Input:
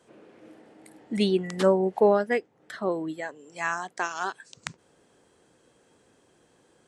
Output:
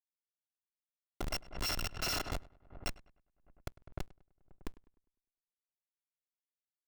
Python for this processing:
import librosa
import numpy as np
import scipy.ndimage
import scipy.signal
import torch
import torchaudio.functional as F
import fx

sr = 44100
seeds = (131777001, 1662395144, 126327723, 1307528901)

y = fx.bit_reversed(x, sr, seeds[0], block=256)
y = scipy.signal.sosfilt(scipy.signal.butter(4, 6800.0, 'lowpass', fs=sr, output='sos'), y)
y = fx.tilt_eq(y, sr, slope=3.0)
y = fx.schmitt(y, sr, flips_db=-17.0)
y = fx.quant_dither(y, sr, seeds[1], bits=10, dither='none')
y = fx.echo_filtered(y, sr, ms=101, feedback_pct=41, hz=2500.0, wet_db=-20.0)
y = fx.pre_swell(y, sr, db_per_s=130.0)
y = y * librosa.db_to_amplitude(-6.5)